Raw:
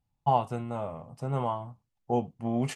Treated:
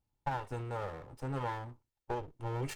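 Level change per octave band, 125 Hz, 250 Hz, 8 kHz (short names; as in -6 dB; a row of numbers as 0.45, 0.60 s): -6.0 dB, -12.0 dB, n/a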